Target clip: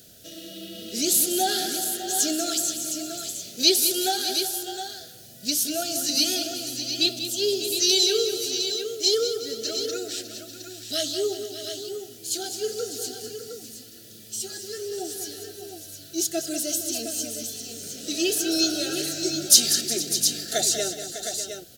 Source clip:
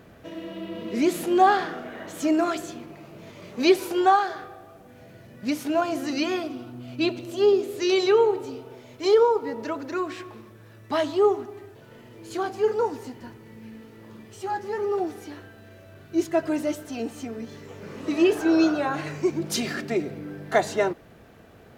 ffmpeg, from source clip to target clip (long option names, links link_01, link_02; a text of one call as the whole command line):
ffmpeg -i in.wav -af "asuperstop=centerf=1000:order=20:qfactor=1.9,aecho=1:1:192|369|462|600|712:0.316|0.15|0.126|0.237|0.376,aexciter=amount=9.3:drive=8:freq=3300,volume=-7dB" out.wav